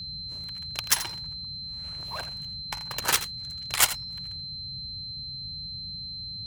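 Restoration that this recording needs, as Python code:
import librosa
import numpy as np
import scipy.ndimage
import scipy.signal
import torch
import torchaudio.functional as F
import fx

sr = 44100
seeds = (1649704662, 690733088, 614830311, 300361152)

y = fx.notch(x, sr, hz=4100.0, q=30.0)
y = fx.noise_reduce(y, sr, print_start_s=1.32, print_end_s=1.82, reduce_db=30.0)
y = fx.fix_echo_inverse(y, sr, delay_ms=83, level_db=-13.5)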